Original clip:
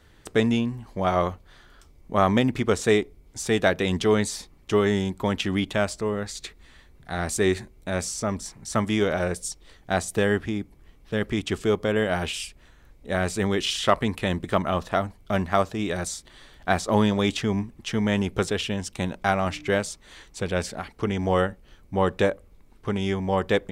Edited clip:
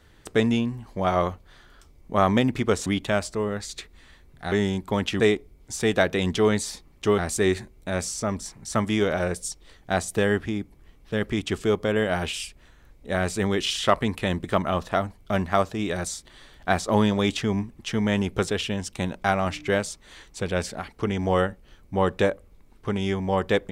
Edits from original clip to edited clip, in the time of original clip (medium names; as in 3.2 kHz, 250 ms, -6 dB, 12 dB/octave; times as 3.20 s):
2.86–4.84 s: swap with 5.52–7.18 s